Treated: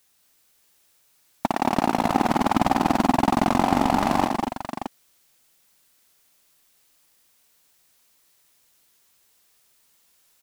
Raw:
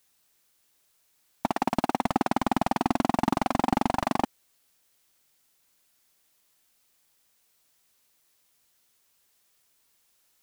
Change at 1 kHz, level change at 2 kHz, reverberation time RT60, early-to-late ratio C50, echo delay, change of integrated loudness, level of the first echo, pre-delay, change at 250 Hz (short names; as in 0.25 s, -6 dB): +5.5 dB, +5.5 dB, none, none, 90 ms, +5.0 dB, -10.5 dB, none, +5.5 dB